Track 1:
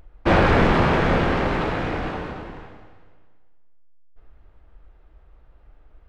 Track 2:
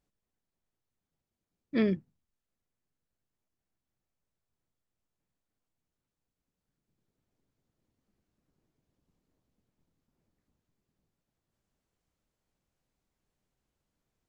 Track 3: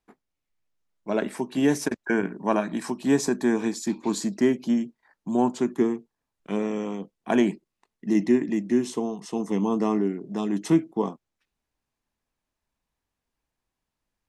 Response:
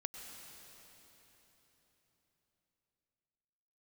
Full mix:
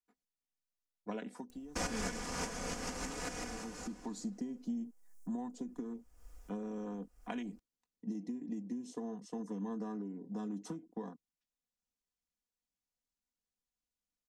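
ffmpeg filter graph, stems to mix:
-filter_complex "[0:a]acompressor=threshold=0.0631:ratio=6,aexciter=amount=14.8:drive=3.3:freq=5600,adelay=1500,volume=0.355[s0];[1:a]adelay=150,volume=0.106[s1];[2:a]acompressor=threshold=0.0631:ratio=6,afwtdn=0.0112,acrossover=split=150|3000[s2][s3][s4];[s3]acompressor=threshold=0.0282:ratio=6[s5];[s2][s5][s4]amix=inputs=3:normalize=0,volume=1.26,afade=t=out:st=1.11:d=0.52:silence=0.251189,afade=t=in:st=3.46:d=0.64:silence=0.316228,asplit=2[s6][s7];[s7]apad=whole_len=334687[s8];[s0][s8]sidechaincompress=threshold=0.00126:ratio=8:attack=6.4:release=285[s9];[s9][s1][s6]amix=inputs=3:normalize=0,equalizer=f=6300:w=0.6:g=11.5,aecho=1:1:4.1:0.65"

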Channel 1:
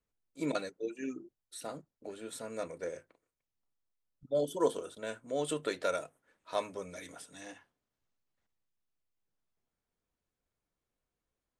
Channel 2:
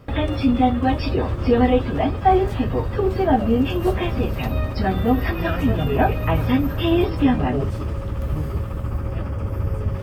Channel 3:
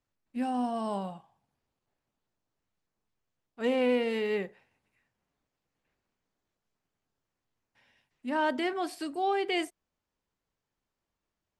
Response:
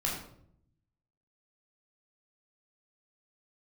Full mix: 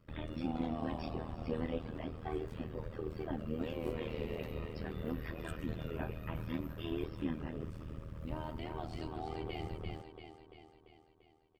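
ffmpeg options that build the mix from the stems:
-filter_complex "[0:a]afwtdn=0.00398,alimiter=level_in=1.68:limit=0.0631:level=0:latency=1,volume=0.596,volume=0.251[s0];[1:a]equalizer=f=740:w=4.4:g=-11,volume=0.15,asplit=2[s1][s2];[s2]volume=0.141[s3];[2:a]lowpass=4600,acompressor=threshold=0.0178:ratio=10,equalizer=f=1700:w=4.7:g=-13.5,volume=0.668,asplit=3[s4][s5][s6];[s5]volume=0.224[s7];[s6]volume=0.708[s8];[3:a]atrim=start_sample=2205[s9];[s7][s9]afir=irnorm=-1:irlink=0[s10];[s3][s8]amix=inputs=2:normalize=0,aecho=0:1:342|684|1026|1368|1710|2052|2394|2736|3078:1|0.57|0.325|0.185|0.106|0.0602|0.0343|0.0195|0.0111[s11];[s0][s1][s4][s10][s11]amix=inputs=5:normalize=0,tremolo=f=79:d=0.919"

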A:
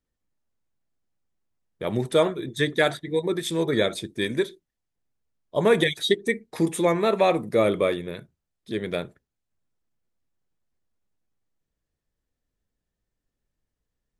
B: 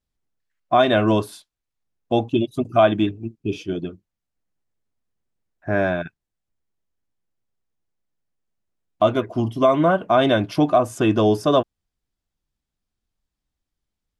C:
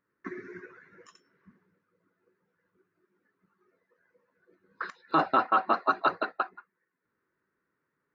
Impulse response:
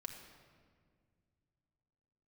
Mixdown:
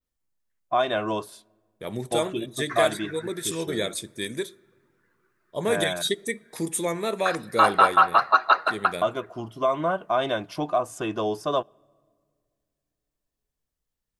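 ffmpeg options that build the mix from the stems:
-filter_complex "[0:a]highshelf=f=5300:g=10.5,volume=0.447,asplit=2[s0][s1];[s1]volume=0.141[s2];[1:a]equalizer=f=100:t=o:w=0.67:g=-9,equalizer=f=250:t=o:w=0.67:g=-8,equalizer=f=1000:t=o:w=0.67:g=4,volume=0.398,asplit=2[s3][s4];[s4]volume=0.0708[s5];[2:a]highpass=770,acontrast=35,adelay=2450,volume=1.26,asplit=2[s6][s7];[s7]volume=0.237[s8];[3:a]atrim=start_sample=2205[s9];[s2][s5][s8]amix=inputs=3:normalize=0[s10];[s10][s9]afir=irnorm=-1:irlink=0[s11];[s0][s3][s6][s11]amix=inputs=4:normalize=0,adynamicequalizer=threshold=0.00501:dfrequency=8400:dqfactor=0.87:tfrequency=8400:tqfactor=0.87:attack=5:release=100:ratio=0.375:range=3:mode=boostabove:tftype=bell"

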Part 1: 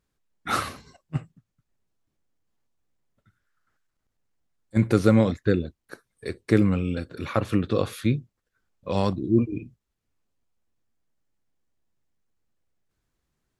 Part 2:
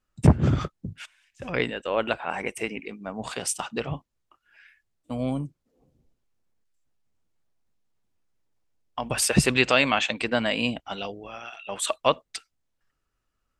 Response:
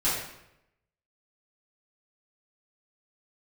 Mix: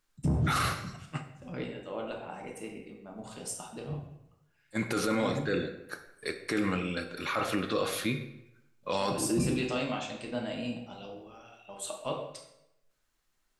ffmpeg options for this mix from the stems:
-filter_complex "[0:a]highpass=f=920:p=1,volume=1.41,asplit=2[s0][s1];[s1]volume=0.158[s2];[1:a]equalizer=f=1900:w=0.63:g=-11,volume=0.237,asplit=2[s3][s4];[s4]volume=0.398[s5];[2:a]atrim=start_sample=2205[s6];[s2][s5]amix=inputs=2:normalize=0[s7];[s7][s6]afir=irnorm=-1:irlink=0[s8];[s0][s3][s8]amix=inputs=3:normalize=0,alimiter=limit=0.1:level=0:latency=1:release=10"

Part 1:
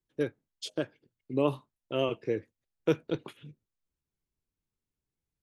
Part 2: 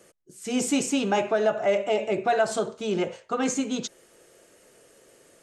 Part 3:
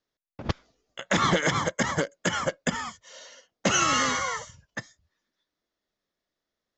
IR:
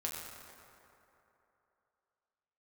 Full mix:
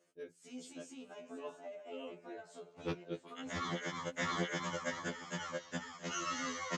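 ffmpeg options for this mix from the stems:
-filter_complex "[0:a]volume=0.422,afade=t=in:st=2.39:d=0.37:silence=0.398107[s0];[1:a]acompressor=threshold=0.0355:ratio=10,volume=0.168,asplit=2[s1][s2];[s2]volume=0.224[s3];[2:a]adelay=2400,volume=0.376,asplit=2[s4][s5];[s5]volume=0.668[s6];[s1][s4]amix=inputs=2:normalize=0,alimiter=level_in=1.41:limit=0.0631:level=0:latency=1:release=467,volume=0.708,volume=1[s7];[s3][s6]amix=inputs=2:normalize=0,aecho=0:1:676|1352|2028:1|0.17|0.0289[s8];[s0][s7][s8]amix=inputs=3:normalize=0,highpass=120,lowpass=7700,afftfilt=real='re*2*eq(mod(b,4),0)':imag='im*2*eq(mod(b,4),0)':win_size=2048:overlap=0.75"

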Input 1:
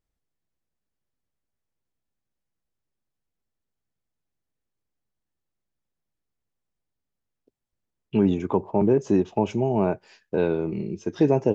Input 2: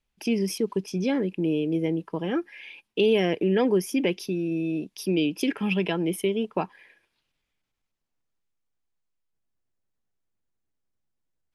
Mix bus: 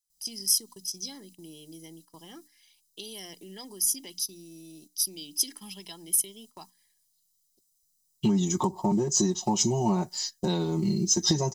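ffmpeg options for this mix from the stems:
-filter_complex "[0:a]aecho=1:1:5.5:1,acompressor=threshold=0.0794:ratio=5,adelay=100,volume=0.891[s0];[1:a]bass=f=250:g=-6,treble=f=4000:g=3,bandreject=f=60:t=h:w=6,bandreject=f=120:t=h:w=6,bandreject=f=180:t=h:w=6,bandreject=f=240:t=h:w=6,bandreject=f=300:t=h:w=6,acompressor=threshold=0.0316:ratio=1.5,volume=0.15[s1];[s0][s1]amix=inputs=2:normalize=0,agate=range=0.355:threshold=0.00224:ratio=16:detection=peak,aecho=1:1:1:0.6,aexciter=amount=8.3:drive=9.9:freq=4000"

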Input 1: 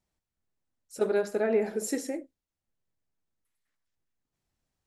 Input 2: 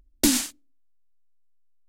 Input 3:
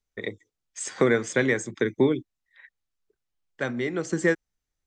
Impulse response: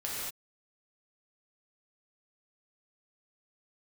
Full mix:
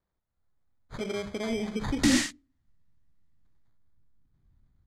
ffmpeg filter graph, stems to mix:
-filter_complex "[0:a]alimiter=level_in=1.06:limit=0.0631:level=0:latency=1:release=230,volume=0.944,acrusher=samples=16:mix=1:aa=0.000001,volume=0.794[s0];[1:a]highpass=160,equalizer=f=1900:w=7.3:g=13.5,asoftclip=type=tanh:threshold=0.0668,adelay=1800,volume=1[s1];[s0][s1]amix=inputs=2:normalize=0,lowpass=6200,asubboost=boost=11.5:cutoff=170,dynaudnorm=f=230:g=3:m=1.58"

